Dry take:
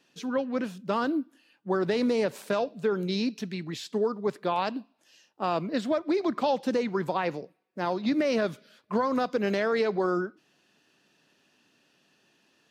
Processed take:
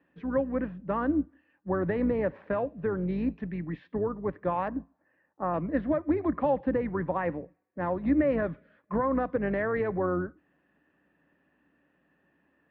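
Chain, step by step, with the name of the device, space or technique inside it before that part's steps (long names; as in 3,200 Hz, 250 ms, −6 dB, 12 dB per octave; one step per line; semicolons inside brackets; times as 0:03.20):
0:04.68–0:05.54: inverse Chebyshev low-pass filter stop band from 4,000 Hz, stop band 40 dB
sub-octave bass pedal (sub-octave generator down 2 octaves, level −5 dB; loudspeaker in its box 62–2,300 Hz, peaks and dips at 170 Hz +8 dB, 290 Hz +9 dB, 550 Hz +8 dB, 810 Hz +4 dB, 1,100 Hz +6 dB, 1,800 Hz +10 dB)
low-shelf EQ 380 Hz +4 dB
level −8.5 dB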